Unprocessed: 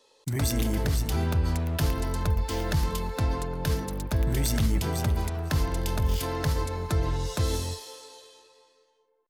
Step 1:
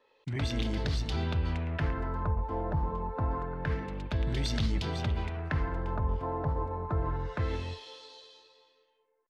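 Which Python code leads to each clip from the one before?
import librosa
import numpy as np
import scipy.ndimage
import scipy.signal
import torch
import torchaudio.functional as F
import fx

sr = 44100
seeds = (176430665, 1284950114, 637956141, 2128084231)

y = fx.filter_lfo_lowpass(x, sr, shape='sine', hz=0.27, low_hz=890.0, high_hz=4100.0, q=2.0)
y = F.gain(torch.from_numpy(y), -5.0).numpy()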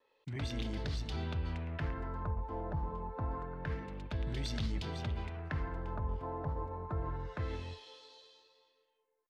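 y = fx.vibrato(x, sr, rate_hz=0.61, depth_cents=11.0)
y = F.gain(torch.from_numpy(y), -6.5).numpy()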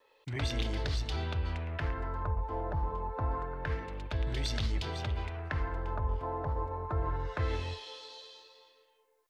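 y = fx.peak_eq(x, sr, hz=190.0, db=-10.0, octaves=1.1)
y = fx.rider(y, sr, range_db=5, speed_s=2.0)
y = F.gain(torch.from_numpy(y), 5.5).numpy()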